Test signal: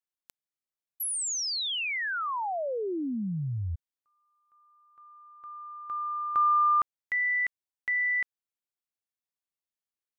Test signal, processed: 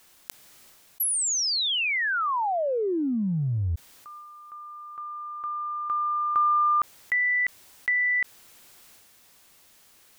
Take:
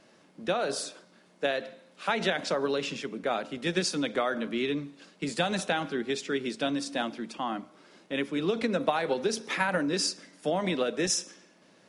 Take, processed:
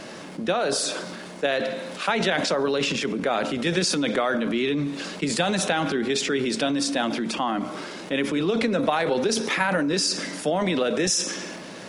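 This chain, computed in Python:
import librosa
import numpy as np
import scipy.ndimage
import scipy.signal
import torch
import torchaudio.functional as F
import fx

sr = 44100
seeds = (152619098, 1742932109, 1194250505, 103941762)

y = fx.transient(x, sr, attack_db=3, sustain_db=8)
y = fx.env_flatten(y, sr, amount_pct=50)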